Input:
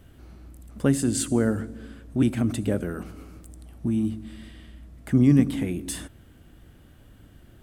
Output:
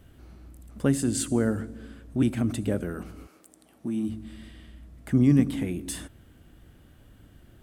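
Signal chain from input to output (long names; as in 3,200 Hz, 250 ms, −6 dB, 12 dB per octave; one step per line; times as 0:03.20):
0:03.26–0:04.08: high-pass filter 480 Hz → 180 Hz 12 dB per octave
level −2 dB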